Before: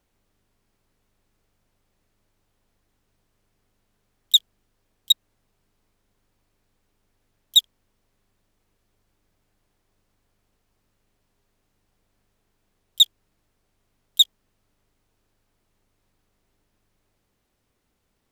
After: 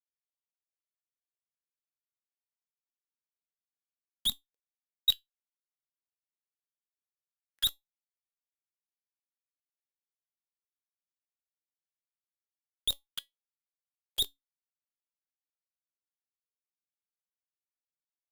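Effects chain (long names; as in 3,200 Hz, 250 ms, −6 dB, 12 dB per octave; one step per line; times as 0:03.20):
reversed piece by piece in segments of 157 ms
fuzz pedal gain 34 dB, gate −43 dBFS
tuned comb filter 280 Hz, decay 0.16 s, harmonics all, mix 50%
auto-filter bell 0.48 Hz 210–3,000 Hz +18 dB
level −7 dB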